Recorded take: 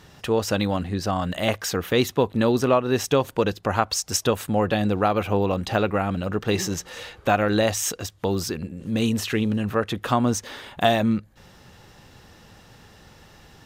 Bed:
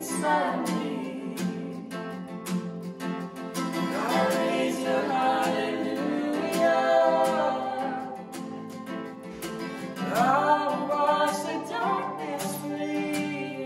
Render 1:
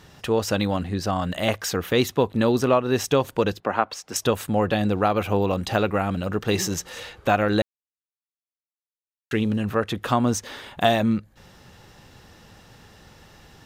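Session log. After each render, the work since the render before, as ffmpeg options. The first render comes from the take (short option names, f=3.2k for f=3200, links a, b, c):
-filter_complex "[0:a]asettb=1/sr,asplit=3[a][b][c];[a]atrim=end=3.604[d];[b]atrim=start=3.6:end=4.16,asetpts=PTS-STARTPTS,afade=t=in:d=0.004:c=qsin,afade=t=out:st=0.556:d=0.004:c=qsin,acrossover=split=180 3200:gain=0.126 1 0.2[e][f][g];[e][f][g]amix=inputs=3:normalize=0[h];[c]atrim=start=4.156[i];[d][h]acrossfade=d=0.004:c1=hsin:c2=qsin[j];[j][i]acrossfade=d=0.004:c1=qsin:c2=hsin,asettb=1/sr,asplit=3[k][l][m];[k]atrim=end=5.214[n];[l]atrim=start=5.21:end=7,asetpts=PTS-STARTPTS,afade=t=in:d=0.004:c=qsin,afade=t=out:st=1.786:d=0.004:c=qsin,highshelf=f=6k:g=4[o];[m]atrim=start=6.996[p];[n][o]acrossfade=d=0.004:c1=hsin:c2=qsin[q];[q][p]acrossfade=d=0.004:c1=qsin:c2=hsin,asplit=3[r][s][t];[r]atrim=end=7.62,asetpts=PTS-STARTPTS,afade=t=out:st=7.616:d=0.004:c=hsin[u];[s]atrim=start=7.62:end=9.31,asetpts=PTS-STARTPTS,volume=0[v];[t]atrim=start=9.31,asetpts=PTS-STARTPTS,afade=t=in:d=0.004:c=hsin[w];[u][v][w]concat=n=3:v=0:a=1"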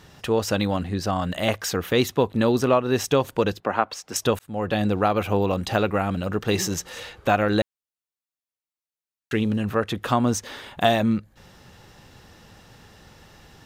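-filter_complex "[0:a]asplit=2[a][b];[a]atrim=end=4.39,asetpts=PTS-STARTPTS,afade=t=out:st=4.386:d=0.004:c=hsin[c];[b]atrim=start=4.39,asetpts=PTS-STARTPTS,afade=t=in:d=0.4[d];[c][d]concat=n=2:v=0:a=1"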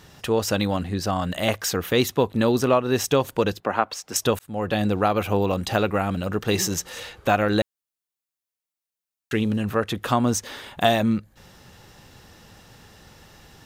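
-af "highshelf=f=6.4k:g=5"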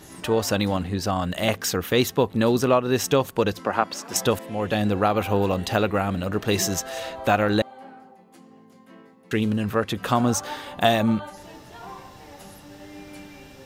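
-filter_complex "[1:a]volume=-13.5dB[a];[0:a][a]amix=inputs=2:normalize=0"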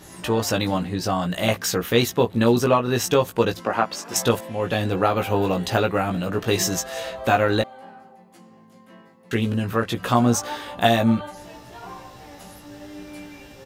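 -filter_complex "[0:a]asplit=2[a][b];[b]adelay=17,volume=-4dB[c];[a][c]amix=inputs=2:normalize=0"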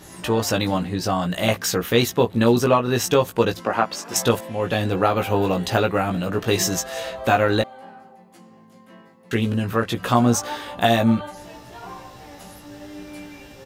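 -af "volume=1dB,alimiter=limit=-3dB:level=0:latency=1"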